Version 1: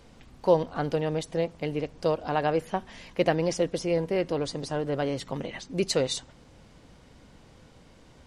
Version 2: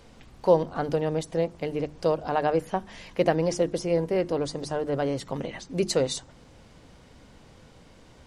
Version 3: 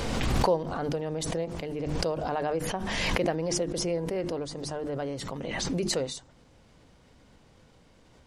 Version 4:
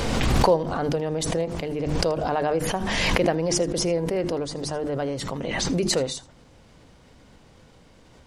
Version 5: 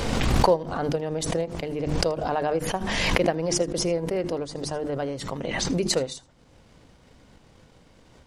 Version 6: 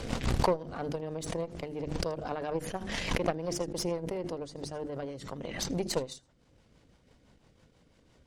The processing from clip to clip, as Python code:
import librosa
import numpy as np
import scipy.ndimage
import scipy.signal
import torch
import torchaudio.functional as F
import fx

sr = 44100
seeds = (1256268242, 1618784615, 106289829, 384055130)

y1 = fx.hum_notches(x, sr, base_hz=50, count=7)
y1 = fx.dynamic_eq(y1, sr, hz=2900.0, q=0.84, threshold_db=-45.0, ratio=4.0, max_db=-5)
y1 = y1 * 10.0 ** (2.0 / 20.0)
y2 = fx.pre_swell(y1, sr, db_per_s=21.0)
y2 = y2 * 10.0 ** (-6.5 / 20.0)
y3 = y2 + 10.0 ** (-21.0 / 20.0) * np.pad(y2, (int(80 * sr / 1000.0), 0))[:len(y2)]
y3 = y3 * 10.0 ** (5.5 / 20.0)
y4 = fx.transient(y3, sr, attack_db=5, sustain_db=-5)
y4 = y4 * 10.0 ** (-2.0 / 20.0)
y5 = fx.rotary(y4, sr, hz=6.0)
y5 = fx.cheby_harmonics(y5, sr, harmonics=(8,), levels_db=(-20,), full_scale_db=-3.5)
y5 = y5 * 10.0 ** (-7.0 / 20.0)